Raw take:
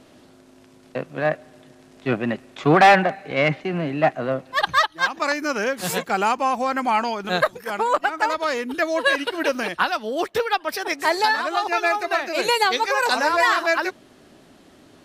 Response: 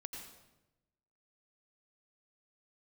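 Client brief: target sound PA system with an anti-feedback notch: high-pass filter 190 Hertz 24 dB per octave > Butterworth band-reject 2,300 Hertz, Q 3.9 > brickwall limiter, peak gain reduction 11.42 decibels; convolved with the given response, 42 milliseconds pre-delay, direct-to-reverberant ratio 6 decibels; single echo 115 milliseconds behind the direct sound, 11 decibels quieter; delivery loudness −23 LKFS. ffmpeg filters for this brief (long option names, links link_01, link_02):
-filter_complex "[0:a]aecho=1:1:115:0.282,asplit=2[link_01][link_02];[1:a]atrim=start_sample=2205,adelay=42[link_03];[link_02][link_03]afir=irnorm=-1:irlink=0,volume=-3dB[link_04];[link_01][link_04]amix=inputs=2:normalize=0,highpass=frequency=190:width=0.5412,highpass=frequency=190:width=1.3066,asuperstop=centerf=2300:order=8:qfactor=3.9,volume=0.5dB,alimiter=limit=-13dB:level=0:latency=1"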